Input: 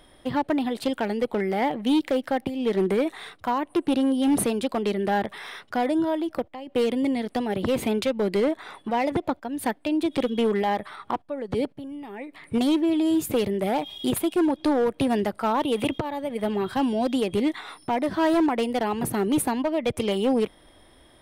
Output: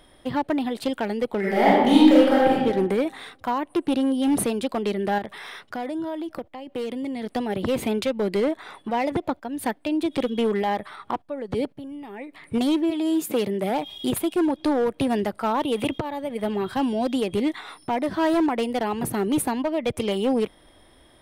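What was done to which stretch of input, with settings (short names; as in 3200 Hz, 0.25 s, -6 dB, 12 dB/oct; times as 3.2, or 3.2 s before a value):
1.39–2.52 reverb throw, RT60 1.2 s, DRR -7.5 dB
5.18–7.22 compressor 2.5:1, threshold -29 dBFS
12.9–13.69 HPF 370 Hz -> 91 Hz 24 dB/oct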